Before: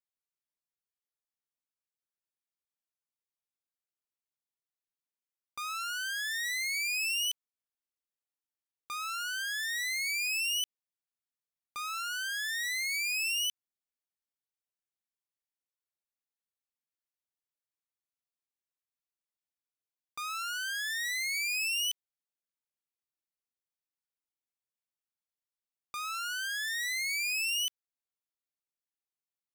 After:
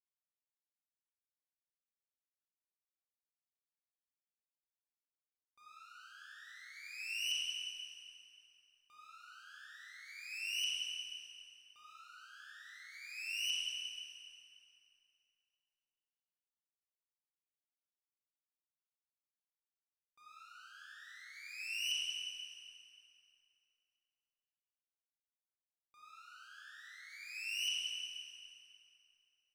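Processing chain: gate -28 dBFS, range -39 dB; treble shelf 5.1 kHz -8.5 dB; reverberation RT60 3.2 s, pre-delay 23 ms, DRR -8 dB; trim +12 dB

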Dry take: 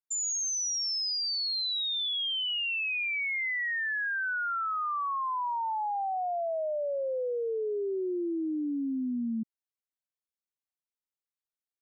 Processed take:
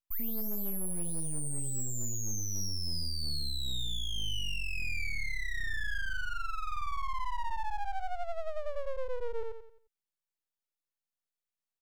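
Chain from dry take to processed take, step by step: high-pass 130 Hz 24 dB/octave; feedback delay 88 ms, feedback 39%, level -3.5 dB; peak limiter -25.5 dBFS, peak gain reduction 3.5 dB; 6.12–6.71 s: boxcar filter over 8 samples; full-wave rectifier

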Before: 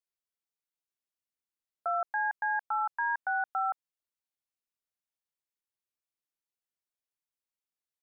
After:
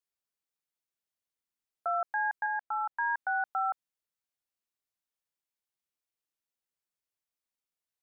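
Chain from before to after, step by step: 2.46–2.98 s: distance through air 400 m

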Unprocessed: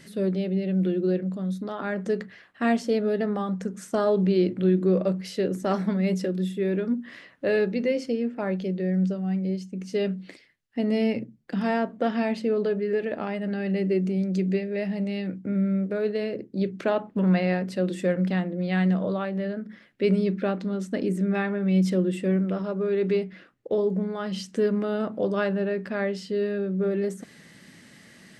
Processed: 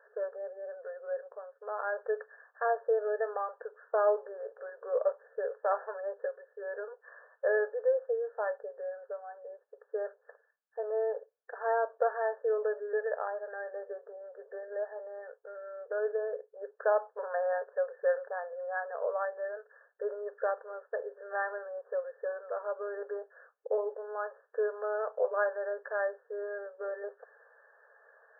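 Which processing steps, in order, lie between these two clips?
brick-wall FIR band-pass 420–1800 Hz; trim -1.5 dB

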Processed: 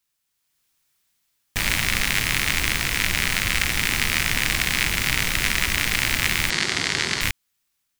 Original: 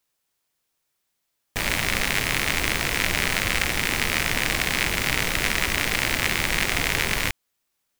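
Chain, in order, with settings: peaking EQ 530 Hz -9 dB 1.9 oct; level rider gain up to 7 dB; 6.50–7.21 s: cabinet simulation 130–8100 Hz, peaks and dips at 370 Hz +7 dB, 2.5 kHz -5 dB, 4.5 kHz +5 dB

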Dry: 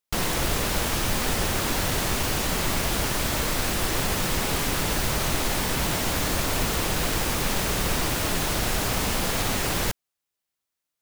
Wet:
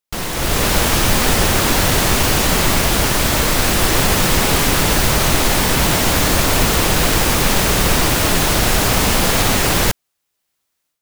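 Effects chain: level rider gain up to 11 dB; trim +1 dB

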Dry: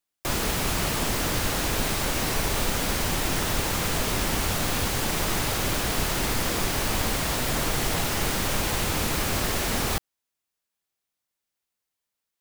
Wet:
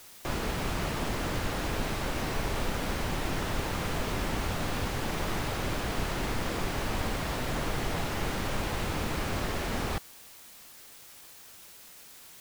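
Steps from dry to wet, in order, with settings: low-pass 2.4 kHz 6 dB/octave; in parallel at -7.5 dB: word length cut 6-bit, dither triangular; on the sum: trim -7 dB

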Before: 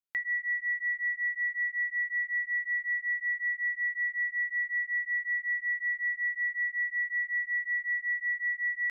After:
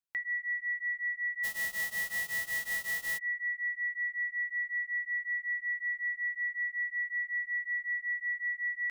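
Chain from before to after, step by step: 1.43–3.17 s: formants flattened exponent 0.1; trim -3 dB

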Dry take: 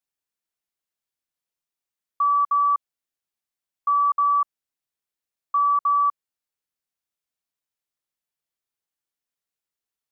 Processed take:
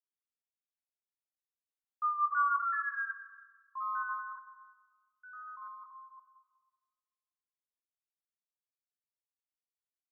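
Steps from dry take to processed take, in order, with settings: Doppler pass-by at 2.42 s, 31 m/s, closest 16 m; chorus 0.26 Hz, delay 16 ms, depth 3.7 ms; thinning echo 189 ms, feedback 61%, high-pass 1 kHz, level -18.5 dB; ever faster or slower copies 648 ms, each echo +3 st, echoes 2; on a send at -9 dB: reverberation RT60 1.8 s, pre-delay 4 ms; on the sum: trim -8 dB

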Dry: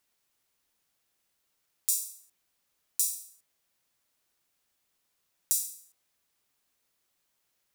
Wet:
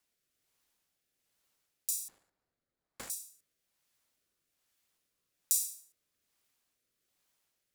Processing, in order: 2.08–3.10 s: median filter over 15 samples; rotary cabinet horn 1.2 Hz

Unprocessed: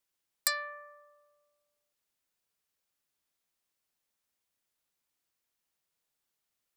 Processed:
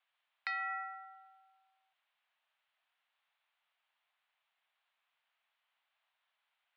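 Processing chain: compression 6:1, threshold -38 dBFS, peak gain reduction 14 dB; mistuned SSB +180 Hz 500–3300 Hz; trim +8.5 dB

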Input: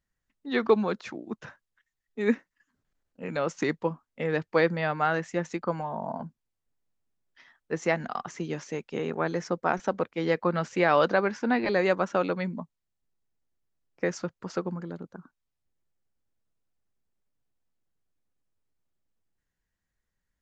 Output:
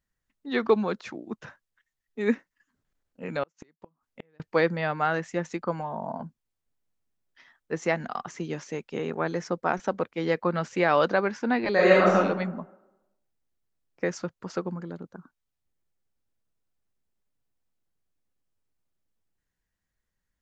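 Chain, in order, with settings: 3.43–4.40 s: inverted gate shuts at -23 dBFS, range -37 dB; 11.73–12.15 s: reverb throw, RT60 1 s, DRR -6.5 dB

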